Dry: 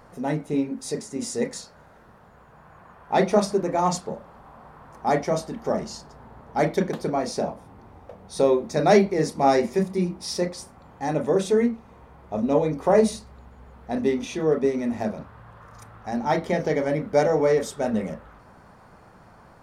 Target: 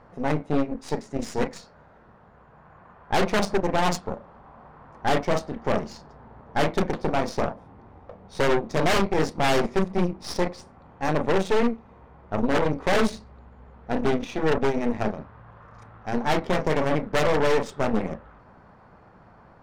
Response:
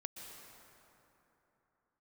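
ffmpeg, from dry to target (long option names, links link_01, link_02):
-af "aeval=exprs='0.168*(abs(mod(val(0)/0.168+3,4)-2)-1)':channel_layout=same,aeval=exprs='0.178*(cos(1*acos(clip(val(0)/0.178,-1,1)))-cos(1*PI/2))+0.0631*(cos(4*acos(clip(val(0)/0.178,-1,1)))-cos(4*PI/2))':channel_layout=same,adynamicsmooth=sensitivity=3.5:basefreq=3600,volume=-1dB"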